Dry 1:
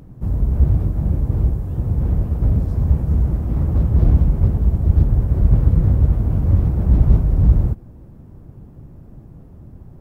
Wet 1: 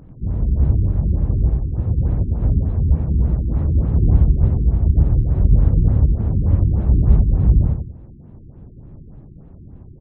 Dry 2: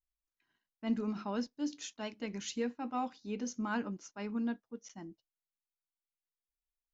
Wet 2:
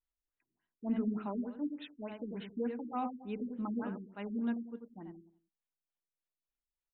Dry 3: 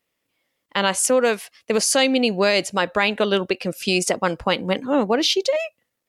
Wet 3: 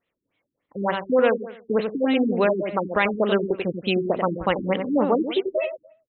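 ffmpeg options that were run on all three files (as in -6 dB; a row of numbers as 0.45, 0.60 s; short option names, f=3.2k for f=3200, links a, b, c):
-filter_complex "[0:a]asplit=2[a][b];[b]adelay=90,lowpass=f=2k:p=1,volume=-6dB,asplit=2[c][d];[d]adelay=90,lowpass=f=2k:p=1,volume=0.35,asplit=2[e][f];[f]adelay=90,lowpass=f=2k:p=1,volume=0.35,asplit=2[g][h];[h]adelay=90,lowpass=f=2k:p=1,volume=0.35[i];[c][e][g][i]amix=inputs=4:normalize=0[j];[a][j]amix=inputs=2:normalize=0,afftfilt=real='re*lt(b*sr/1024,390*pow(4200/390,0.5+0.5*sin(2*PI*3.4*pts/sr)))':imag='im*lt(b*sr/1024,390*pow(4200/390,0.5+0.5*sin(2*PI*3.4*pts/sr)))':win_size=1024:overlap=0.75,volume=-1dB"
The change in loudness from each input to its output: 0.0, -0.5, -3.0 LU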